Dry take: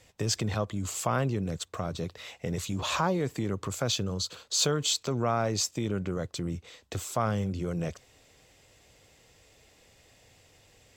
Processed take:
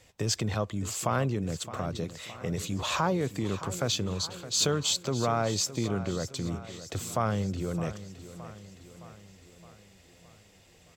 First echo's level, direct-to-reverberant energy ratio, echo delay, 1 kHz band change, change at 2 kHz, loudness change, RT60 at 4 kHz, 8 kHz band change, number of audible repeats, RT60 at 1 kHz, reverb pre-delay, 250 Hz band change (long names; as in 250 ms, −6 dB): −14.0 dB, no reverb audible, 616 ms, 0.0 dB, 0.0 dB, 0.0 dB, no reverb audible, 0.0 dB, 5, no reverb audible, no reverb audible, +0.5 dB